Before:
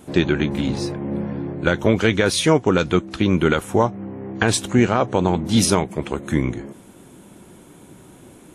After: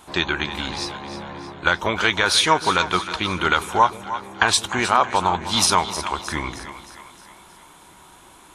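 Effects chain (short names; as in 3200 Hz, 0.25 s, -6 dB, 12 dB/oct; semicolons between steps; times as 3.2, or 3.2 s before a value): ten-band EQ 125 Hz -12 dB, 250 Hz -9 dB, 500 Hz -8 dB, 1000 Hz +10 dB, 4000 Hz +6 dB; on a send: split-band echo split 500 Hz, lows 0.155 s, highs 0.311 s, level -12 dB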